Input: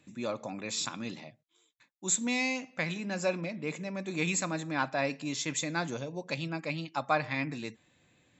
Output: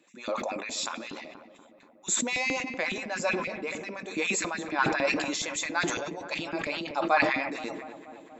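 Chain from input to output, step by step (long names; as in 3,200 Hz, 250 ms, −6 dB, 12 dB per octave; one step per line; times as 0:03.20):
mains-hum notches 50/100/150/200/250/300/350/400/450 Hz
auto-filter high-pass saw up 7.2 Hz 210–2,700 Hz
feedback echo with a low-pass in the loop 239 ms, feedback 77%, low-pass 1,700 Hz, level −14.5 dB
level that may fall only so fast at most 41 dB per second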